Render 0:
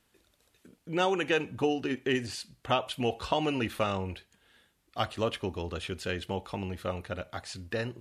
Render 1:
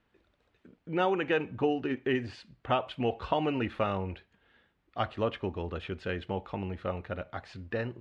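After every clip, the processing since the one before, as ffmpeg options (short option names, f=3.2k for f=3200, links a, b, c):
-af "lowpass=2.4k"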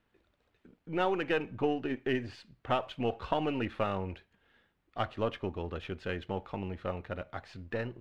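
-af "aeval=exprs='if(lt(val(0),0),0.708*val(0),val(0))':c=same,volume=-1dB"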